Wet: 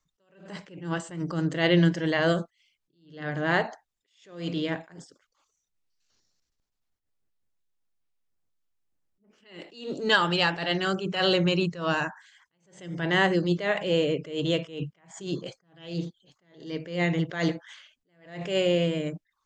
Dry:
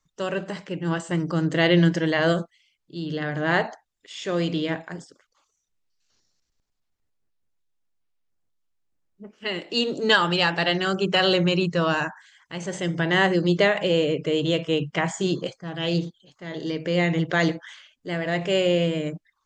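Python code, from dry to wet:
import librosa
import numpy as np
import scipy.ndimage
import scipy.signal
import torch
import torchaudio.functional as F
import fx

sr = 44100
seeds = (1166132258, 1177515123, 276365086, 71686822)

y = fx.attack_slew(x, sr, db_per_s=120.0)
y = y * 10.0 ** (-2.5 / 20.0)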